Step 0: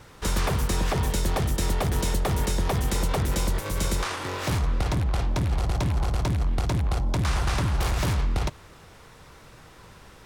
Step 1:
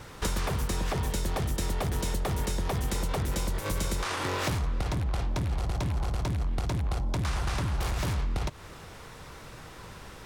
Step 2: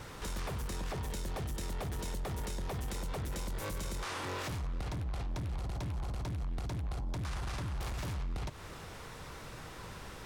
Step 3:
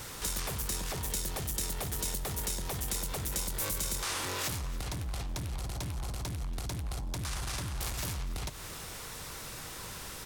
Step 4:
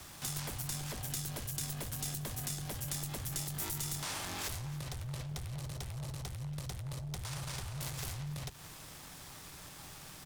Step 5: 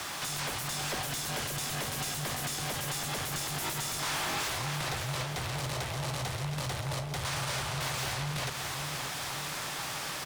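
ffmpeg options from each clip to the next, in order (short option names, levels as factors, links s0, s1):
-af "acompressor=threshold=0.0316:ratio=6,volume=1.5"
-af "alimiter=level_in=1.58:limit=0.0631:level=0:latency=1:release=19,volume=0.631,asoftclip=type=tanh:threshold=0.0316,volume=0.891"
-af "crystalizer=i=3.5:c=0,aecho=1:1:283|566|849|1132:0.119|0.0559|0.0263|0.0123"
-af "aeval=exprs='sgn(val(0))*max(abs(val(0))-0.00355,0)':c=same,afreqshift=-190,volume=0.668"
-filter_complex "[0:a]asplit=2[s0][s1];[s1]highpass=f=720:p=1,volume=28.2,asoftclip=type=tanh:threshold=0.0794[s2];[s0][s2]amix=inputs=2:normalize=0,lowpass=f=3900:p=1,volume=0.501,aecho=1:1:576|1152|1728|2304|2880|3456|4032:0.398|0.219|0.12|0.0662|0.0364|0.02|0.011,volume=0.794"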